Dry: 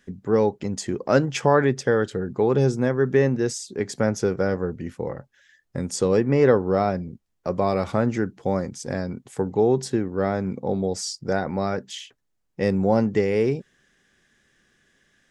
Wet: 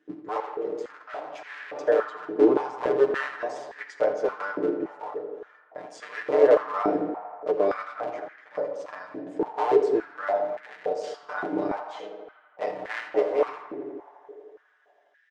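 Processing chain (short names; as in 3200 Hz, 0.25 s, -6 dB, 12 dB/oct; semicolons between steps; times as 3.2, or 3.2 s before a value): cycle switcher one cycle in 3, muted; 7.61–8.53 auto swell 0.107 s; comb 6.7 ms, depth 81%; on a send at -4.5 dB: reverb RT60 0.90 s, pre-delay 10 ms; 0.4–1.76 on the sum: tube stage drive 28 dB, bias 0.65; tape spacing loss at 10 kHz 24 dB; tape echo 83 ms, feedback 86%, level -11.5 dB, low-pass 3600 Hz; stepped high-pass 3.5 Hz 330–1800 Hz; gain -6.5 dB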